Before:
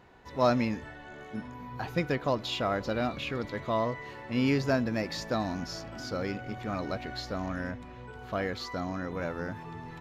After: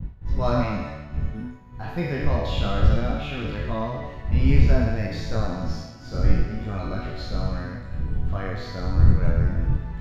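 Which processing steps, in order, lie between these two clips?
peak hold with a decay on every bin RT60 1.66 s
wind on the microphone 81 Hz −26 dBFS
downward expander −32 dBFS
bass and treble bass +8 dB, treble −4 dB
micro pitch shift up and down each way 10 cents

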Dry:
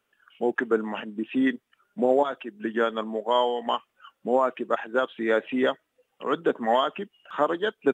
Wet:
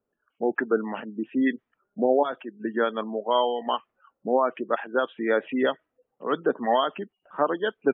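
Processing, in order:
gate on every frequency bin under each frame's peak −30 dB strong
low-pass that shuts in the quiet parts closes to 600 Hz, open at −17 dBFS

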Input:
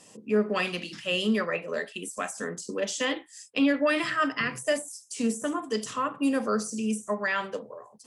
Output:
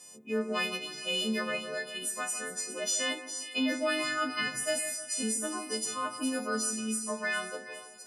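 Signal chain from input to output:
every partial snapped to a pitch grid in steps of 3 semitones
0:02.32–0:03.04: low-shelf EQ 120 Hz −12 dB
echo with a time of its own for lows and highs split 1,900 Hz, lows 154 ms, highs 409 ms, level −11.5 dB
level −7 dB

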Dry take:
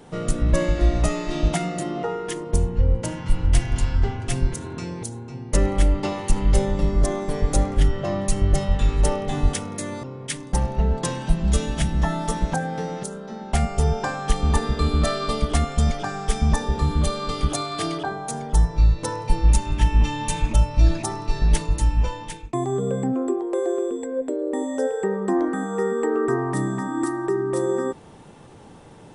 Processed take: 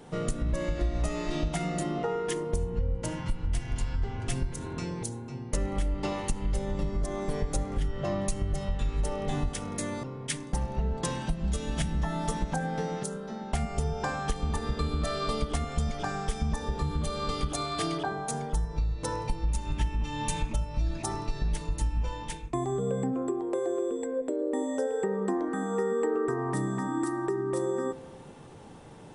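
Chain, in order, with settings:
downward compressor, threshold −22 dBFS, peak gain reduction 11.5 dB
convolution reverb RT60 1.6 s, pre-delay 3 ms, DRR 16.5 dB
level −3 dB

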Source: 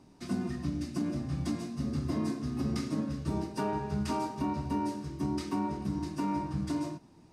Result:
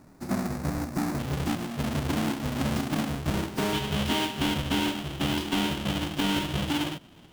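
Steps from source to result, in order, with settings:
each half-wave held at its own peak
parametric band 3,100 Hz −12 dB 0.5 octaves, from 0:01.19 +3.5 dB, from 0:03.73 +13 dB

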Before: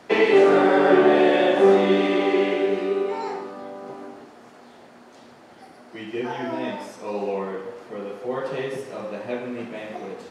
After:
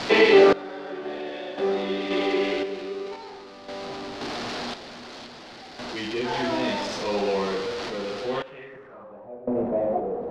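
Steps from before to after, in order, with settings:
converter with a step at zero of −27.5 dBFS
sample-and-hold tremolo 1.9 Hz, depth 90%
low-pass filter sweep 4,500 Hz → 640 Hz, 0:08.23–0:09.38

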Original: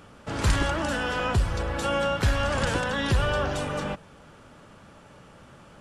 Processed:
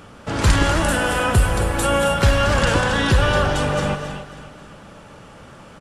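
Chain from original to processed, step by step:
0:00.75–0:02.16: high shelf with overshoot 7,500 Hz +9.5 dB, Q 1.5
repeating echo 271 ms, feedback 46%, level −13.5 dB
reverb whose tail is shaped and stops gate 300 ms rising, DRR 6.5 dB
level +7 dB

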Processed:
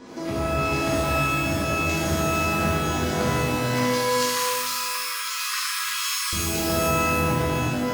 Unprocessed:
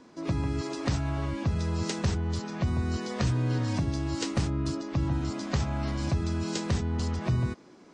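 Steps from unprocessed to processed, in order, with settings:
0:03.60–0:06.33: linear-phase brick-wall high-pass 1,000 Hz
downward compressor 10 to 1, threshold −39 dBFS, peak gain reduction 17.5 dB
reverb with rising layers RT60 1.9 s, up +12 semitones, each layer −2 dB, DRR −8 dB
level +7 dB

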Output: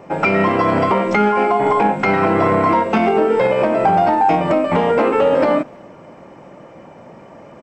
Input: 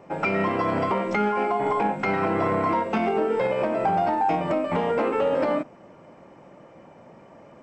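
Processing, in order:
far-end echo of a speakerphone 250 ms, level −28 dB
level +8.5 dB

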